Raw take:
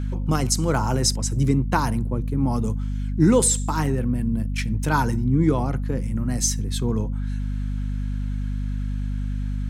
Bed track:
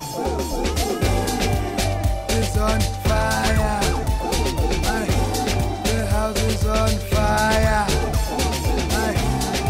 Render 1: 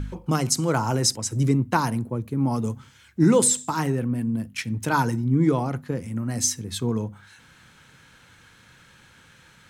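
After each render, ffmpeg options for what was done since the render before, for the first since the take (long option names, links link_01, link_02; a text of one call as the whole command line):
ffmpeg -i in.wav -af "bandreject=frequency=50:width_type=h:width=4,bandreject=frequency=100:width_type=h:width=4,bandreject=frequency=150:width_type=h:width=4,bandreject=frequency=200:width_type=h:width=4,bandreject=frequency=250:width_type=h:width=4" out.wav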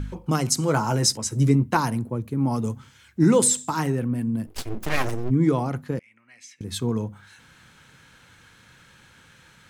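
ffmpeg -i in.wav -filter_complex "[0:a]asettb=1/sr,asplit=3[link_01][link_02][link_03];[link_01]atrim=end=0.594[link_04];[link_02]atrim=start=0.59:end=1.77,asetpts=PTS-STARTPTS,afade=type=in:duration=0.004:curve=qsin,afade=type=out:start_time=1.176:duration=0.004:curve=qsin,asplit=2[link_05][link_06];[link_06]adelay=14,volume=-8dB[link_07];[link_05][link_07]amix=inputs=2:normalize=0,atrim=end_sample=52038[link_08];[link_03]atrim=start=1.766[link_09];[link_04][link_08]acrossfade=duration=0.004:curve1=hsin:curve2=qsin[link_10];[link_10][link_09]acrossfade=duration=0.004:curve1=qsin:curve2=hsin,asplit=3[link_11][link_12][link_13];[link_11]afade=type=out:start_time=4.46:duration=0.02[link_14];[link_12]aeval=exprs='abs(val(0))':channel_layout=same,afade=type=in:start_time=4.46:duration=0.02,afade=type=out:start_time=5.29:duration=0.02[link_15];[link_13]afade=type=in:start_time=5.29:duration=0.02[link_16];[link_14][link_15][link_16]amix=inputs=3:normalize=0,asettb=1/sr,asplit=3[link_17][link_18][link_19];[link_17]atrim=end=5.994[link_20];[link_18]atrim=start=5.99:end=6.61,asetpts=PTS-STARTPTS,afade=type=in:duration=0.004:curve=qsin,afade=type=out:start_time=0.616:duration=0.004:curve=qsin,bandpass=frequency=2300:width_type=q:width=5.8[link_21];[link_19]atrim=start=6.606[link_22];[link_20][link_21]acrossfade=duration=0.004:curve1=hsin:curve2=qsin[link_23];[link_23][link_22]acrossfade=duration=0.004:curve1=qsin:curve2=hsin" out.wav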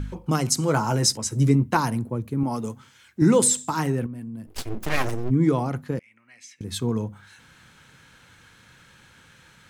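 ffmpeg -i in.wav -filter_complex "[0:a]asettb=1/sr,asplit=3[link_01][link_02][link_03];[link_01]atrim=end=2.434[link_04];[link_02]atrim=start=2.43:end=3.22,asetpts=PTS-STARTPTS,afade=type=in:duration=0.004:curve=qsin,afade=type=out:start_time=0.786:duration=0.004:curve=qsin,highpass=frequency=250:poles=1[link_05];[link_03]atrim=start=3.216[link_06];[link_04][link_05]acrossfade=duration=0.004:curve1=hsin:curve2=qsin[link_07];[link_07][link_06]acrossfade=duration=0.004:curve1=qsin:curve2=hsin,asettb=1/sr,asplit=3[link_08][link_09][link_10];[link_08]atrim=end=4.064[link_11];[link_09]atrim=start=4.06:end=4.54,asetpts=PTS-STARTPTS,afade=type=in:duration=0.004:curve=qsin,afade=type=out:start_time=0.476:duration=0.004:curve=qsin,acompressor=threshold=-40dB:ratio=2:attack=3.2:release=140:knee=1:detection=peak[link_12];[link_10]atrim=start=4.536[link_13];[link_11][link_12]acrossfade=duration=0.004:curve1=hsin:curve2=qsin[link_14];[link_14][link_13]acrossfade=duration=0.004:curve1=qsin:curve2=hsin" out.wav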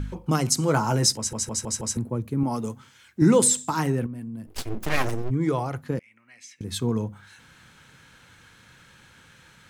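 ffmpeg -i in.wav -filter_complex "[0:a]asettb=1/sr,asplit=3[link_01][link_02][link_03];[link_01]atrim=end=5.224[link_04];[link_02]atrim=start=5.22:end=5.85,asetpts=PTS-STARTPTS,afade=type=in:duration=0.004:curve=qsin,afade=type=out:start_time=0.626:duration=0.004:curve=qsin,equalizer=frequency=220:width_type=o:width=0.77:gain=-12.5[link_05];[link_03]atrim=start=5.846[link_06];[link_04][link_05]acrossfade=duration=0.004:curve1=hsin:curve2=qsin[link_07];[link_07][link_06]acrossfade=duration=0.004:curve1=qsin:curve2=hsin,asplit=6[link_08][link_09][link_10][link_11][link_12][link_13];[link_08]atrim=end=1.332[link_14];[link_09]atrim=start=1.168:end=1.332[link_15];[link_10]atrim=start=1.168:end=1.332[link_16];[link_11]atrim=start=1.168:end=1.332[link_17];[link_12]atrim=start=1.168:end=1.332[link_18];[link_13]atrim=start=1.968[link_19];[link_14][link_15]acrossfade=duration=0.004:curve1=hsin:curve2=hsin[link_20];[link_20][link_16]acrossfade=duration=0.004:curve1=hsin:curve2=hsin[link_21];[link_21][link_17]acrossfade=duration=0.004:curve1=hsin:curve2=hsin[link_22];[link_22][link_18]acrossfade=duration=0.004:curve1=hsin:curve2=hsin[link_23];[link_23][link_19]acrossfade=duration=0.004:curve1=hsin:curve2=hsin" out.wav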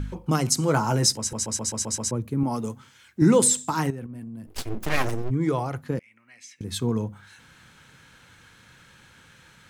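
ffmpeg -i in.wav -filter_complex "[0:a]asettb=1/sr,asplit=3[link_01][link_02][link_03];[link_01]atrim=end=3.904[link_04];[link_02]atrim=start=3.9:end=4.5,asetpts=PTS-STARTPTS,afade=type=in:duration=0.004:curve=qsin,afade=type=out:start_time=0.596:duration=0.004:curve=qsin,acompressor=threshold=-34dB:ratio=3:attack=3.2:release=140:knee=1:detection=peak[link_05];[link_03]atrim=start=4.496[link_06];[link_04][link_05]acrossfade=duration=0.004:curve1=hsin:curve2=qsin[link_07];[link_07][link_06]acrossfade=duration=0.004:curve1=qsin:curve2=hsin,asplit=7[link_08][link_09][link_10][link_11][link_12][link_13][link_14];[link_08]atrim=end=1.462[link_15];[link_09]atrim=start=1.328:end=1.462[link_16];[link_10]atrim=start=1.328:end=1.462[link_17];[link_11]atrim=start=1.328:end=1.462[link_18];[link_12]atrim=start=1.328:end=1.462[link_19];[link_13]atrim=start=1.328:end=1.462[link_20];[link_14]atrim=start=2.108[link_21];[link_15][link_16]acrossfade=duration=0.004:curve1=hsin:curve2=hsin[link_22];[link_22][link_17]acrossfade=duration=0.004:curve1=hsin:curve2=hsin[link_23];[link_23][link_18]acrossfade=duration=0.004:curve1=hsin:curve2=hsin[link_24];[link_24][link_19]acrossfade=duration=0.004:curve1=hsin:curve2=hsin[link_25];[link_25][link_20]acrossfade=duration=0.004:curve1=hsin:curve2=hsin[link_26];[link_26][link_21]acrossfade=duration=0.004:curve1=hsin:curve2=hsin" out.wav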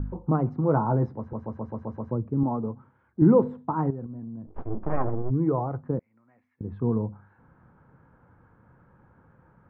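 ffmpeg -i in.wav -af "lowpass=frequency=1100:width=0.5412,lowpass=frequency=1100:width=1.3066" out.wav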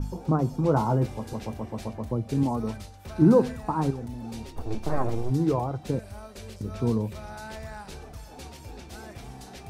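ffmpeg -i in.wav -i bed.wav -filter_complex "[1:a]volume=-21.5dB[link_01];[0:a][link_01]amix=inputs=2:normalize=0" out.wav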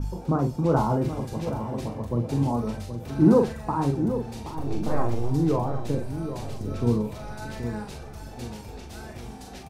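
ffmpeg -i in.wav -filter_complex "[0:a]asplit=2[link_01][link_02];[link_02]adelay=42,volume=-5.5dB[link_03];[link_01][link_03]amix=inputs=2:normalize=0,asplit=2[link_04][link_05];[link_05]adelay=775,lowpass=frequency=1100:poles=1,volume=-9dB,asplit=2[link_06][link_07];[link_07]adelay=775,lowpass=frequency=1100:poles=1,volume=0.47,asplit=2[link_08][link_09];[link_09]adelay=775,lowpass=frequency=1100:poles=1,volume=0.47,asplit=2[link_10][link_11];[link_11]adelay=775,lowpass=frequency=1100:poles=1,volume=0.47,asplit=2[link_12][link_13];[link_13]adelay=775,lowpass=frequency=1100:poles=1,volume=0.47[link_14];[link_04][link_06][link_08][link_10][link_12][link_14]amix=inputs=6:normalize=0" out.wav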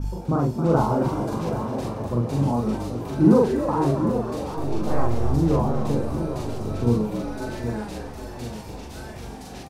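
ffmpeg -i in.wav -filter_complex "[0:a]asplit=2[link_01][link_02];[link_02]adelay=42,volume=-7dB[link_03];[link_01][link_03]amix=inputs=2:normalize=0,asplit=8[link_04][link_05][link_06][link_07][link_08][link_09][link_10][link_11];[link_05]adelay=267,afreqshift=74,volume=-10dB[link_12];[link_06]adelay=534,afreqshift=148,volume=-14.3dB[link_13];[link_07]adelay=801,afreqshift=222,volume=-18.6dB[link_14];[link_08]adelay=1068,afreqshift=296,volume=-22.9dB[link_15];[link_09]adelay=1335,afreqshift=370,volume=-27.2dB[link_16];[link_10]adelay=1602,afreqshift=444,volume=-31.5dB[link_17];[link_11]adelay=1869,afreqshift=518,volume=-35.8dB[link_18];[link_04][link_12][link_13][link_14][link_15][link_16][link_17][link_18]amix=inputs=8:normalize=0" out.wav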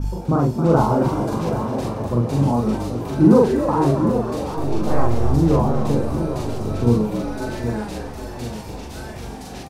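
ffmpeg -i in.wav -af "volume=4dB,alimiter=limit=-3dB:level=0:latency=1" out.wav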